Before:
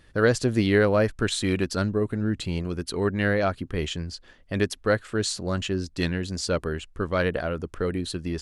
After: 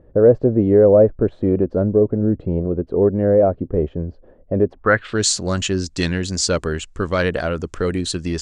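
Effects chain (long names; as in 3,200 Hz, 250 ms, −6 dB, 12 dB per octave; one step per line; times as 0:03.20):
in parallel at +0.5 dB: brickwall limiter −17 dBFS, peak gain reduction 9.5 dB
on the sum: low-pass filter sweep 550 Hz → 7,300 Hz, 0:04.69–0:05.23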